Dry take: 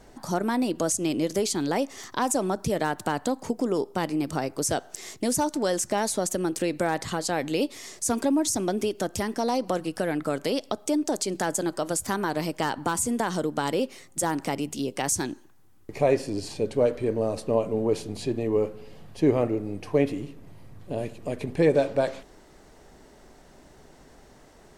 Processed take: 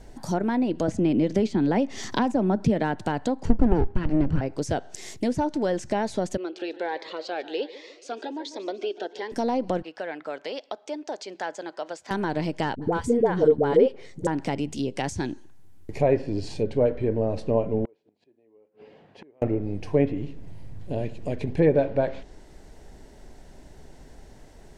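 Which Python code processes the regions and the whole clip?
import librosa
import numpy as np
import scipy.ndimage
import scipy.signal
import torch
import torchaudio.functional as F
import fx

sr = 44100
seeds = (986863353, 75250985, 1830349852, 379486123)

y = fx.chain(x, sr, fx.peak_eq(hz=220.0, db=7.5, octaves=0.51),
    fx.band_squash(depth_pct=70), at=(0.88, 2.95))
y = fx.chain(y, sr, fx.lower_of_two(delay_ms=0.69),
    fx.low_shelf(hz=320.0, db=10.0), at=(3.45, 4.41))
y = fx.chain(y, sr, fx.cheby1_bandpass(low_hz=400.0, high_hz=4000.0, order=3),
    fx.echo_feedback(ms=146, feedback_pct=54, wet_db=-16.0),
    fx.notch_cascade(direction='rising', hz=1.3), at=(6.37, 9.32))
y = fx.chain(y, sr, fx.highpass(hz=630.0, slope=12),
    fx.air_absorb(metres=190.0), at=(9.82, 12.11))
y = fx.chain(y, sr, fx.peak_eq(hz=450.0, db=14.5, octaves=0.36),
    fx.notch(hz=2700.0, q=12.0),
    fx.dispersion(late='highs', ms=70.0, hz=550.0), at=(12.75, 14.27))
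y = fx.chain(y, sr, fx.gate_flip(shuts_db=-26.0, range_db=-33),
    fx.bandpass_edges(low_hz=320.0, high_hz=2500.0),
    fx.transformer_sat(knee_hz=1200.0), at=(17.85, 19.42))
y = fx.low_shelf(y, sr, hz=110.0, db=11.0)
y = fx.env_lowpass_down(y, sr, base_hz=2200.0, full_db=-19.5)
y = fx.peak_eq(y, sr, hz=1200.0, db=-8.5, octaves=0.28)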